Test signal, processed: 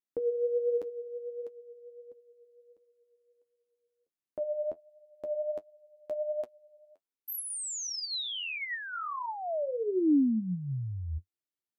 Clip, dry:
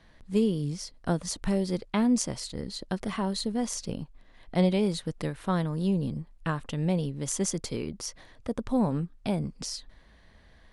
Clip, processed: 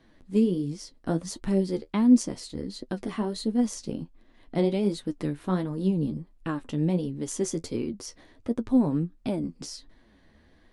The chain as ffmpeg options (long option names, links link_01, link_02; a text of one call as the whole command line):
ffmpeg -i in.wav -af "equalizer=frequency=300:width_type=o:width=0.97:gain=11,flanger=delay=7.7:depth=6.3:regen=39:speed=1.4:shape=triangular" out.wav